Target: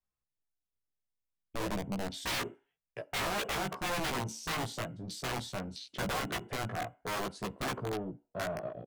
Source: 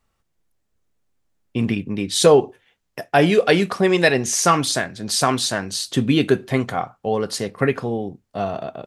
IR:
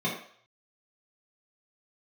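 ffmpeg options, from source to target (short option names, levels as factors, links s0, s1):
-filter_complex "[0:a]afwtdn=0.0355,lowshelf=f=130:g=3,acrossover=split=250|1000[s0][s1][s2];[s2]acompressor=threshold=0.0178:ratio=8[s3];[s0][s1][s3]amix=inputs=3:normalize=0,aeval=exprs='(mod(6.31*val(0)+1,2)-1)/6.31':c=same,asetrate=41625,aresample=44100,atempo=1.05946,asoftclip=type=tanh:threshold=0.0794,flanger=delay=15:depth=2.8:speed=0.53,asplit=2[s4][s5];[s5]asuperstop=centerf=4600:order=4:qfactor=1.1[s6];[1:a]atrim=start_sample=2205,asetrate=57330,aresample=44100[s7];[s6][s7]afir=irnorm=-1:irlink=0,volume=0.0562[s8];[s4][s8]amix=inputs=2:normalize=0,volume=0.562"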